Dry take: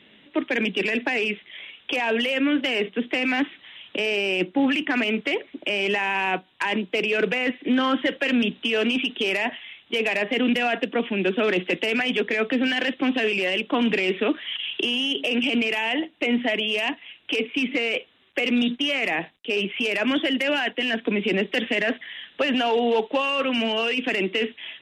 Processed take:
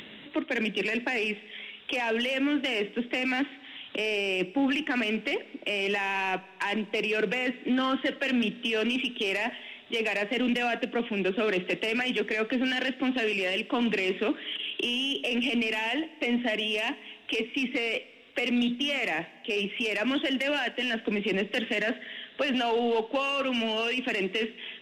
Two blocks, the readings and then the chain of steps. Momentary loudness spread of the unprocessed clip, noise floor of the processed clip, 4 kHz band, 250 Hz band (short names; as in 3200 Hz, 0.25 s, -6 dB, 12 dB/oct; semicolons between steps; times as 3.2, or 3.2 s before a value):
5 LU, -50 dBFS, -4.5 dB, -5.0 dB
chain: in parallel at -10 dB: hard clip -23.5 dBFS, distortion -9 dB; on the sum: upward compressor, threshold -29 dBFS; Schroeder reverb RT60 1.9 s, combs from 29 ms, DRR 19 dB; gain -6.5 dB